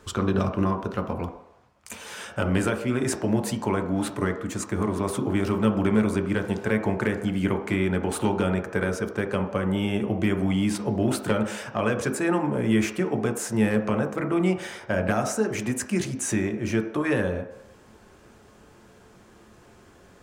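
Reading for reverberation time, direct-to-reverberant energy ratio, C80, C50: 0.75 s, 4.0 dB, 11.5 dB, 8.5 dB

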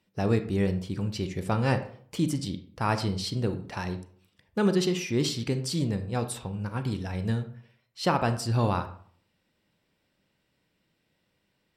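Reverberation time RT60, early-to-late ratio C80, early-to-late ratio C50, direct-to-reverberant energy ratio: 0.55 s, 15.0 dB, 11.5 dB, 9.0 dB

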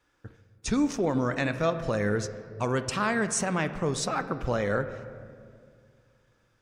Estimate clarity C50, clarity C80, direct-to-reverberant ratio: 11.5 dB, 12.5 dB, 10.5 dB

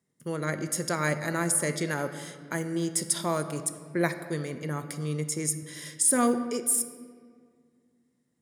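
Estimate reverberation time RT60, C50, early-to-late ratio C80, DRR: 1.9 s, 10.5 dB, 11.5 dB, 9.0 dB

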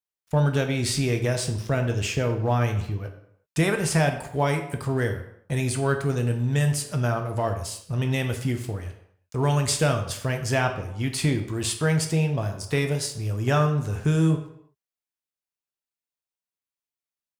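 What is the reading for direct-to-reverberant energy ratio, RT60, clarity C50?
4.5 dB, no single decay rate, 9.0 dB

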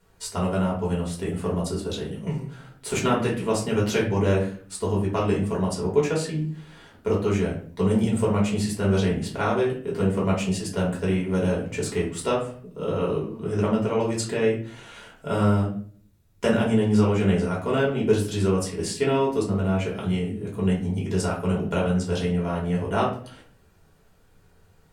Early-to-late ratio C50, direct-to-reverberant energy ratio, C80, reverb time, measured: 6.5 dB, -5.0 dB, 11.0 dB, 0.50 s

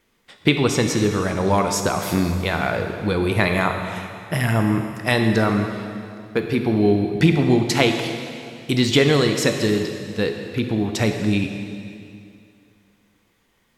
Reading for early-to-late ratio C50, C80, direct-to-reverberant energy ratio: 5.5 dB, 6.5 dB, 4.5 dB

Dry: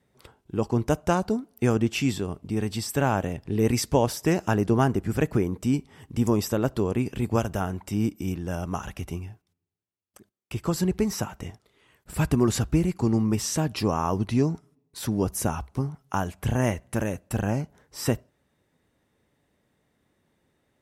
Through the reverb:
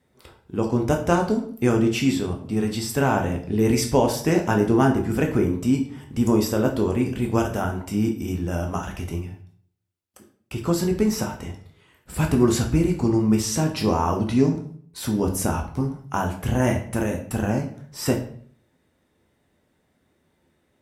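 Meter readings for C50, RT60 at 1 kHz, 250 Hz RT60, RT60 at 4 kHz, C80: 9.0 dB, 0.50 s, 0.65 s, 0.45 s, 13.0 dB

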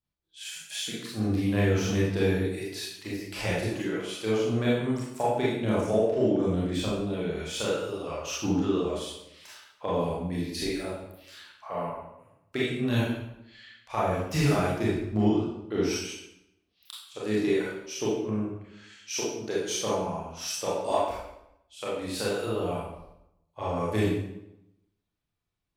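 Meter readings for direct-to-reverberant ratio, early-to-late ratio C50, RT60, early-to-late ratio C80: -7.0 dB, 0.0 dB, 0.85 s, 4.0 dB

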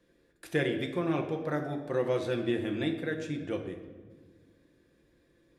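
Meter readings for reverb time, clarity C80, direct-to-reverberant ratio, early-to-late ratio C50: 1.5 s, 9.5 dB, 3.0 dB, 8.0 dB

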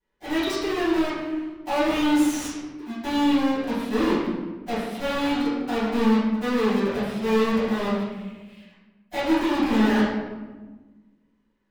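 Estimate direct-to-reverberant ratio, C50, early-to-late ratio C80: -15.5 dB, -0.5 dB, 2.0 dB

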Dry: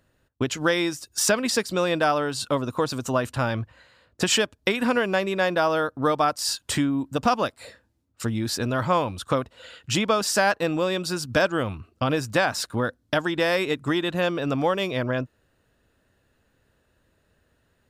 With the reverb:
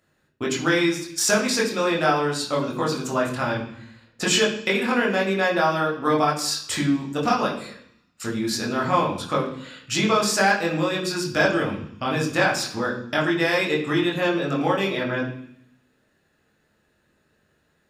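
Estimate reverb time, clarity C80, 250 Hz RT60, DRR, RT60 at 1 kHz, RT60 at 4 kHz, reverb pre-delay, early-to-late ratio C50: 0.65 s, 10.0 dB, 0.90 s, -3.0 dB, 0.70 s, 0.80 s, 18 ms, 7.0 dB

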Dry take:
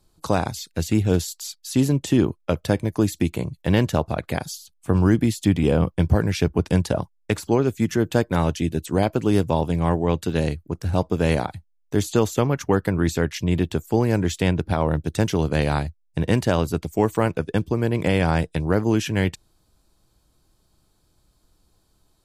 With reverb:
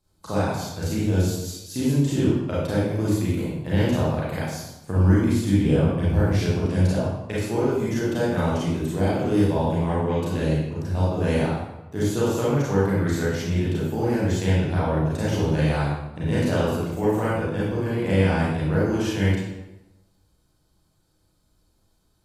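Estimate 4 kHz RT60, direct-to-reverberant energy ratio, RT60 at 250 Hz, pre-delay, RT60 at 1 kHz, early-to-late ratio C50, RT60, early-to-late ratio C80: 0.70 s, -8.5 dB, 1.1 s, 30 ms, 0.90 s, -2.0 dB, 0.95 s, 1.5 dB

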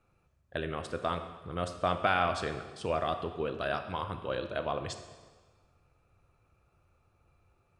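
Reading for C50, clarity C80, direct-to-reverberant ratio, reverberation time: 9.0 dB, 10.5 dB, 7.5 dB, 1.4 s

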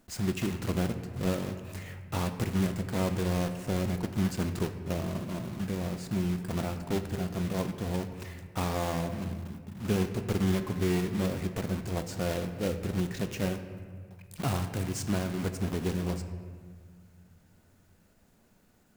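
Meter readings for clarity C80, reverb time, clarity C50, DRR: 10.5 dB, 1.8 s, 9.5 dB, 7.5 dB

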